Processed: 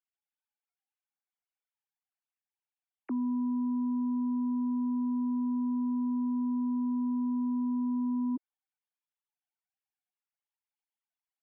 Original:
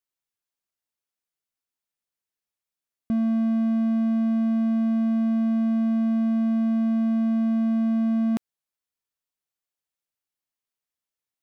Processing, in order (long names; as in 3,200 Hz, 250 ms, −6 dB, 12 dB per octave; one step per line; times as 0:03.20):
three sine waves on the formant tracks
low shelf with overshoot 340 Hz −6.5 dB, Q 1.5